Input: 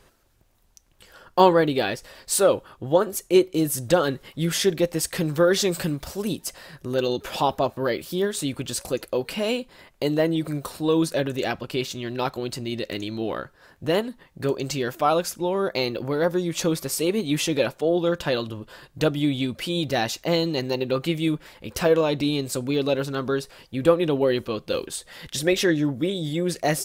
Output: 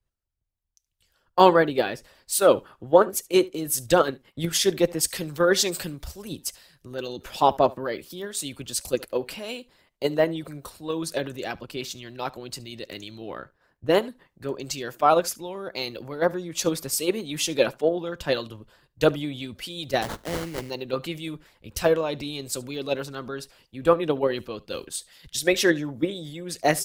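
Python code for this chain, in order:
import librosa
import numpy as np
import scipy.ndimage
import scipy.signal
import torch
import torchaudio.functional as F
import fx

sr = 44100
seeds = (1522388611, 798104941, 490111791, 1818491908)

p1 = fx.dynamic_eq(x, sr, hz=7500.0, q=0.82, threshold_db=-38.0, ratio=4.0, max_db=-5, at=(1.52, 2.44))
p2 = fx.hpss(p1, sr, part='percussive', gain_db=6)
p3 = fx.transient(p2, sr, attack_db=6, sustain_db=-9, at=(3.99, 4.58))
p4 = fx.level_steps(p3, sr, step_db=17)
p5 = p3 + (p4 * librosa.db_to_amplitude(-2.0))
p6 = fx.sample_hold(p5, sr, seeds[0], rate_hz=2500.0, jitter_pct=20, at=(20.01, 20.69), fade=0.02)
p7 = p6 + fx.echo_single(p6, sr, ms=73, db=-22.0, dry=0)
p8 = fx.band_widen(p7, sr, depth_pct=70)
y = p8 * librosa.db_to_amplitude(-9.0)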